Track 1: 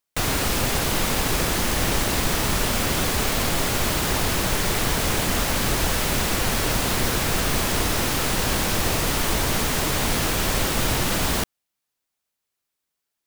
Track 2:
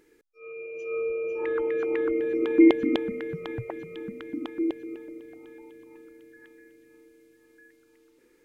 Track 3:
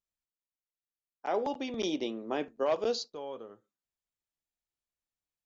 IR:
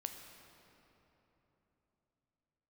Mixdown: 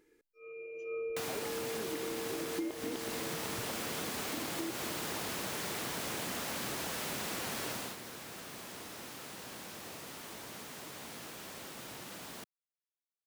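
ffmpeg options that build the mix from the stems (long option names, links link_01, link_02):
-filter_complex "[0:a]highpass=170,adelay=1000,volume=-11dB,afade=type=out:start_time=7.69:duration=0.27:silence=0.266073[link_01];[1:a]volume=-7dB[link_02];[2:a]equalizer=frequency=2000:width=0.32:gain=-13.5,asplit=2[link_03][link_04];[link_04]adelay=8.2,afreqshift=-0.39[link_05];[link_03][link_05]amix=inputs=2:normalize=1,volume=0.5dB[link_06];[link_01][link_02][link_06]amix=inputs=3:normalize=0,acompressor=threshold=-34dB:ratio=12"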